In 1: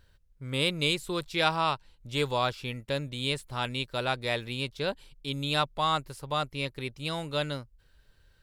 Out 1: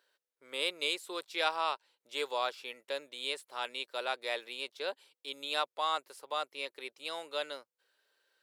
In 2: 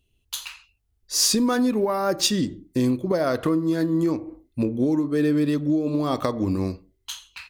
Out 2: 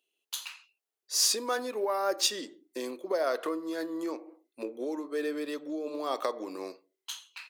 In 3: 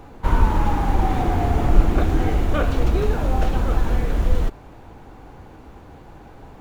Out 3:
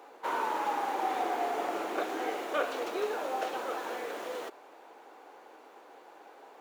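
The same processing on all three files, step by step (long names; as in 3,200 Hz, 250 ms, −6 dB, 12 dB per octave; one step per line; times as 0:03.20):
high-pass filter 400 Hz 24 dB per octave
level −5 dB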